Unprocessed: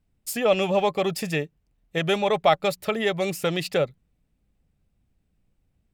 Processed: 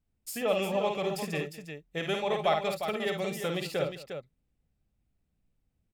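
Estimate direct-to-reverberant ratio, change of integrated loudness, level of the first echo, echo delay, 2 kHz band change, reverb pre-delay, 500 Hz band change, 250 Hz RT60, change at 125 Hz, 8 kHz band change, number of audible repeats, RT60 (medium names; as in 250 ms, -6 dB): no reverb, -7.0 dB, -5.0 dB, 52 ms, -6.5 dB, no reverb, -6.5 dB, no reverb, -7.0 dB, -6.5 dB, 3, no reverb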